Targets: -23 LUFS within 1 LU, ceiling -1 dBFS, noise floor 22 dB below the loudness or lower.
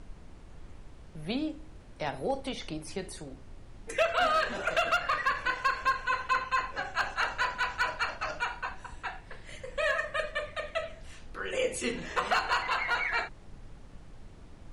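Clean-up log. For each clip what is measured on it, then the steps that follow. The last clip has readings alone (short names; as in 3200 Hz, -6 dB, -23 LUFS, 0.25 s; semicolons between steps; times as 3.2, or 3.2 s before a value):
clipped 0.3%; flat tops at -19.5 dBFS; noise floor -50 dBFS; noise floor target -53 dBFS; loudness -31.0 LUFS; peak -19.5 dBFS; loudness target -23.0 LUFS
-> clip repair -19.5 dBFS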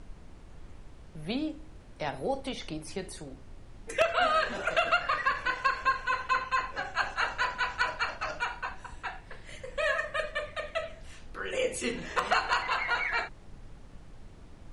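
clipped 0.0%; noise floor -50 dBFS; noise floor target -53 dBFS
-> noise print and reduce 6 dB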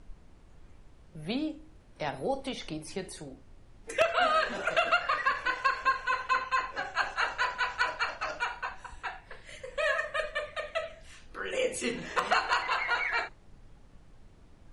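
noise floor -56 dBFS; loudness -30.5 LUFS; peak -10.5 dBFS; loudness target -23.0 LUFS
-> gain +7.5 dB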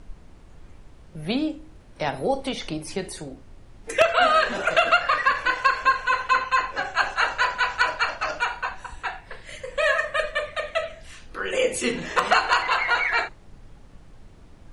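loudness -23.0 LUFS; peak -3.0 dBFS; noise floor -49 dBFS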